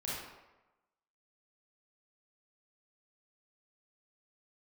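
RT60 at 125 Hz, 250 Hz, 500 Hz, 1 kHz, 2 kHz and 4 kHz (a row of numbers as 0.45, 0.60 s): 0.85, 0.95, 1.0, 1.1, 0.90, 0.65 s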